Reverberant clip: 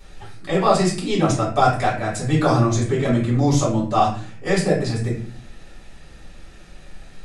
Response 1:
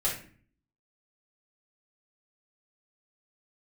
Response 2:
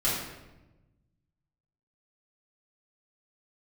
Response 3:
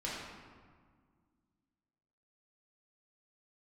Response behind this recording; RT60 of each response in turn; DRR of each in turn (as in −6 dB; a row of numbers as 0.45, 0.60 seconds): 1; 0.45, 1.1, 1.8 seconds; −7.5, −9.0, −7.5 decibels